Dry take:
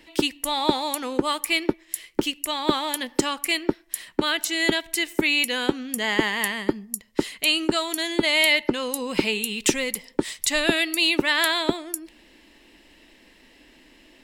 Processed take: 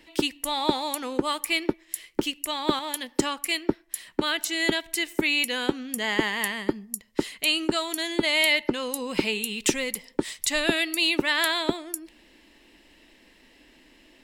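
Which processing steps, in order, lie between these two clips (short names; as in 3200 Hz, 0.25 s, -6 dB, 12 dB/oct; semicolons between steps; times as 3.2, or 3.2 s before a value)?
2.79–4.05 three-band expander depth 40%; gain -2.5 dB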